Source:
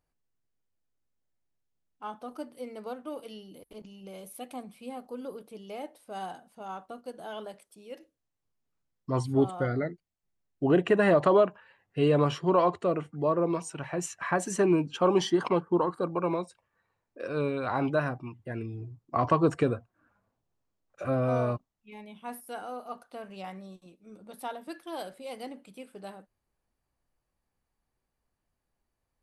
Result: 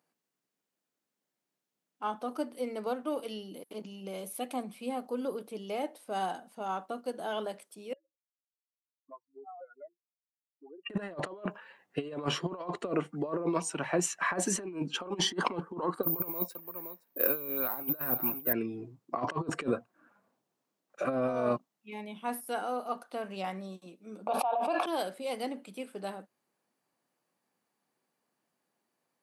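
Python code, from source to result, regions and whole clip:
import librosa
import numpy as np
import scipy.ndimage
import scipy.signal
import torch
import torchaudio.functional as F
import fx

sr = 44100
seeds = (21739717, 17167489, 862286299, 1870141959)

y = fx.chain(x, sr, fx.spec_expand(power=3.8),
    fx.highpass(hz=970.0, slope=24),
    fx.band_squash(depth_pct=70), at=(7.93, 10.9))
y = fx.chain(y, sr, fx.echo_single(ms=520, db=-23.0),
    fx.resample_bad(factor=3, down='filtered', up='zero_stuff'), at=(16.03, 18.53))
y = fx.chain(y, sr, fx.vowel_filter(vowel='a'),
    fx.peak_eq(hz=930.0, db=13.5, octaves=0.32),
    fx.env_flatten(amount_pct=100), at=(24.27, 24.86))
y = scipy.signal.sosfilt(scipy.signal.butter(4, 180.0, 'highpass', fs=sr, output='sos'), y)
y = fx.over_compress(y, sr, threshold_db=-30.0, ratio=-0.5)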